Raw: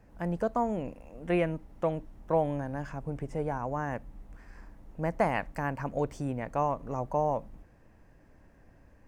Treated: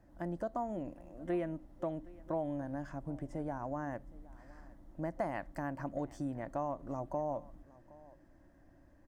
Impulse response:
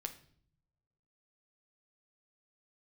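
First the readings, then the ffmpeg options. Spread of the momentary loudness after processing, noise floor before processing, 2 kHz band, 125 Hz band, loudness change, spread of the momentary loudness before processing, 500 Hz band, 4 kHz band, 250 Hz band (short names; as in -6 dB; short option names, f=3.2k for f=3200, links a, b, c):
19 LU, -59 dBFS, -10.0 dB, -9.0 dB, -7.5 dB, 9 LU, -8.0 dB, under -10 dB, -5.0 dB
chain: -af "superequalizer=6b=2.24:7b=0.562:8b=1.58:12b=0.501,acompressor=threshold=-30dB:ratio=2,aecho=1:1:766:0.0841,volume=-6dB"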